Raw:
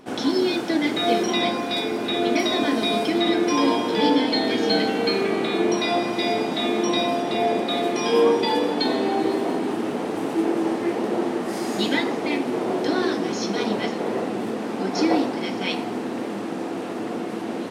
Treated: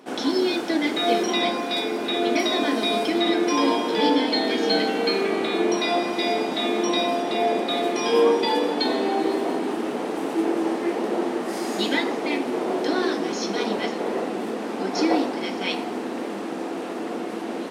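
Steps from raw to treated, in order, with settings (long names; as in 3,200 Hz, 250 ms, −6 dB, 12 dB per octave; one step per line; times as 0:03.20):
high-pass filter 230 Hz 12 dB per octave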